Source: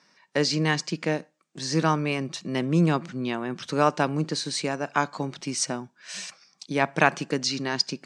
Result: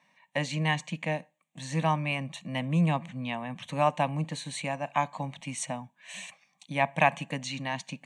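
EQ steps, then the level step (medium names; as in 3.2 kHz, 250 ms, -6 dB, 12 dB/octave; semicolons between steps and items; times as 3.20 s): band-stop 440 Hz, Q 12; static phaser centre 1.4 kHz, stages 6; 0.0 dB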